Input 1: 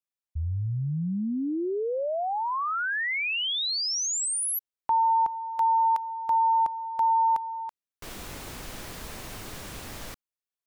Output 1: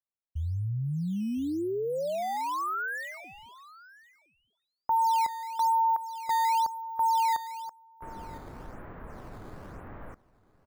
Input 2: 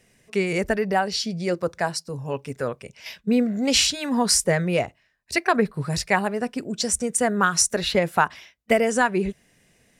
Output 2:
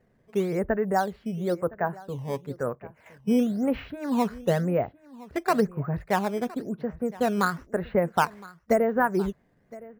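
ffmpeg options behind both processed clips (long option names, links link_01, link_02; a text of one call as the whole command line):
ffmpeg -i in.wav -filter_complex "[0:a]lowpass=frequency=1600:width=0.5412,lowpass=frequency=1600:width=1.3066,asplit=2[link_01][link_02];[link_02]acrusher=samples=9:mix=1:aa=0.000001:lfo=1:lforange=14.4:lforate=0.98,volume=-6dB[link_03];[link_01][link_03]amix=inputs=2:normalize=0,aecho=1:1:1014:0.0944,volume=-5.5dB" out.wav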